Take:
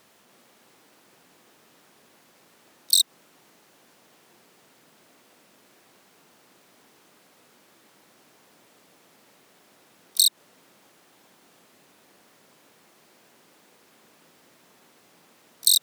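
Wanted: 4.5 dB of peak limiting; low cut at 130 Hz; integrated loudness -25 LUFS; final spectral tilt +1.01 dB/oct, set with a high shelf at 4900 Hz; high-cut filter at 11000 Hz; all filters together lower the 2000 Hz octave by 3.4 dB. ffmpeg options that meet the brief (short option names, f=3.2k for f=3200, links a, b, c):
-af "highpass=130,lowpass=11k,equalizer=f=2k:t=o:g=-3.5,highshelf=f=4.9k:g=-5,volume=1.5dB,alimiter=limit=-11dB:level=0:latency=1"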